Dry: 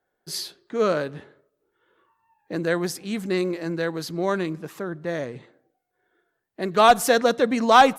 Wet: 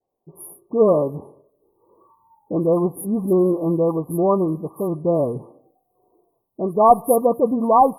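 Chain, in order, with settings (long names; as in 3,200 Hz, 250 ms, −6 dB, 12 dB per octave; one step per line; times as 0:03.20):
automatic gain control gain up to 13 dB
linear-phase brick-wall band-stop 1,200–9,400 Hz
all-pass dispersion highs, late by 88 ms, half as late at 2,200 Hz
level −2 dB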